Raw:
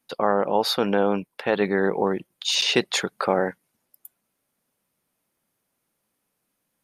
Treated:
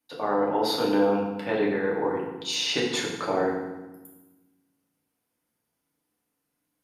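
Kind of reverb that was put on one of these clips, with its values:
feedback delay network reverb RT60 1.1 s, low-frequency decay 1.55×, high-frequency decay 0.8×, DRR −4 dB
level −9 dB

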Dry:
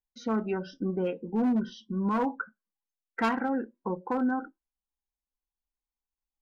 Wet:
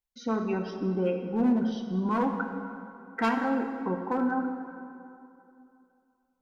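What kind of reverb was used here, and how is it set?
dense smooth reverb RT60 2.7 s, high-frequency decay 0.6×, DRR 4.5 dB

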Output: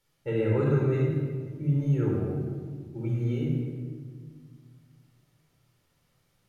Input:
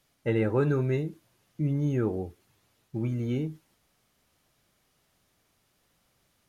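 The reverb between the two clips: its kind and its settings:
rectangular room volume 2,400 cubic metres, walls mixed, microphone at 4.4 metres
level −8 dB

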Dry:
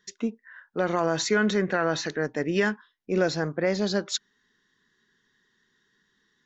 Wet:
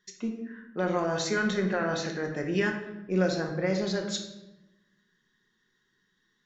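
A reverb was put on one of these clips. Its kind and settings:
rectangular room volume 380 cubic metres, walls mixed, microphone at 0.98 metres
level −5.5 dB

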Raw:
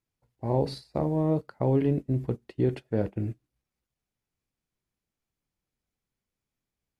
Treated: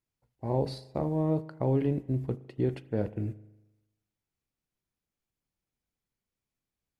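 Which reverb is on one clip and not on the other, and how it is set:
spring reverb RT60 1 s, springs 38 ms, chirp 50 ms, DRR 17 dB
level −3 dB

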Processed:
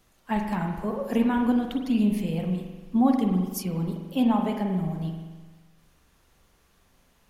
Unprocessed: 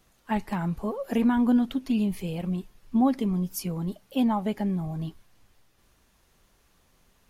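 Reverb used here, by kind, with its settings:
spring reverb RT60 1.3 s, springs 43 ms, chirp 40 ms, DRR 3.5 dB

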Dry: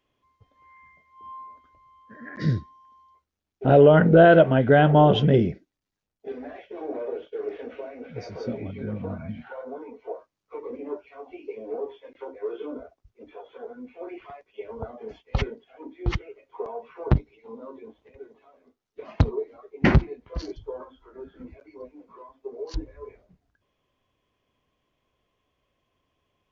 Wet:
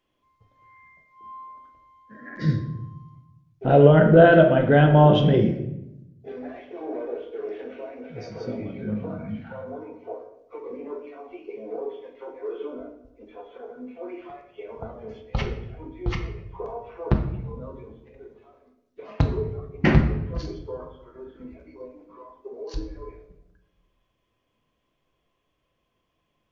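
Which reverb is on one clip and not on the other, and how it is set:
rectangular room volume 260 cubic metres, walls mixed, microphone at 0.76 metres
level −1.5 dB

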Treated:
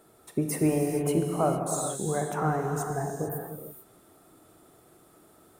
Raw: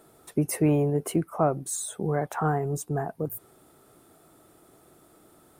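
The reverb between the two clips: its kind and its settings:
reverb whose tail is shaped and stops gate 480 ms flat, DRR 1.5 dB
level −2.5 dB

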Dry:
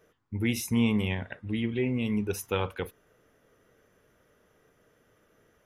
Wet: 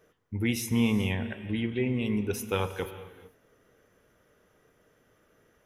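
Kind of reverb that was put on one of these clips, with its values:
reverb whose tail is shaped and stops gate 470 ms flat, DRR 11.5 dB

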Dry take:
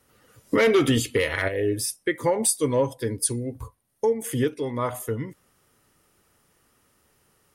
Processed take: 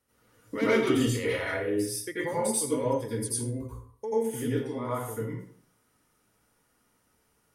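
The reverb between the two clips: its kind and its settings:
dense smooth reverb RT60 0.53 s, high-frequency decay 0.65×, pre-delay 75 ms, DRR −8 dB
level −13.5 dB

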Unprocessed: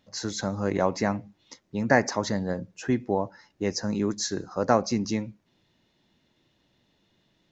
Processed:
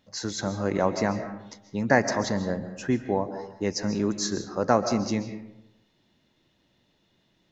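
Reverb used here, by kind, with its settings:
comb and all-pass reverb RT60 0.88 s, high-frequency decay 0.5×, pre-delay 100 ms, DRR 9.5 dB

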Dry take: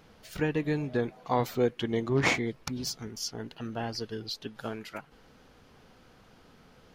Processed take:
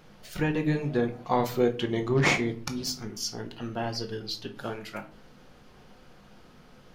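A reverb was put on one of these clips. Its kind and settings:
rectangular room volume 300 cubic metres, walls furnished, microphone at 0.93 metres
level +1.5 dB

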